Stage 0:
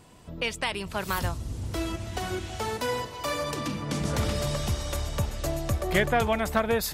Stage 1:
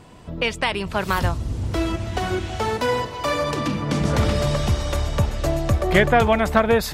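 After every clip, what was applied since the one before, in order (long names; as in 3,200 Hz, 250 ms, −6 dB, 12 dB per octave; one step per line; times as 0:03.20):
low-pass filter 3,500 Hz 6 dB per octave
level +8 dB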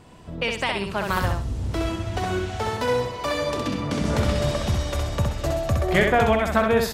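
repeating echo 65 ms, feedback 27%, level −4 dB
level −3.5 dB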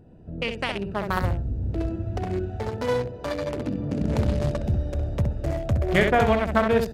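adaptive Wiener filter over 41 samples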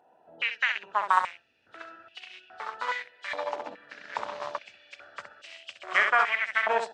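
hearing-aid frequency compression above 2,900 Hz 1.5 to 1
high-pass on a step sequencer 2.4 Hz 840–2,800 Hz
level −2.5 dB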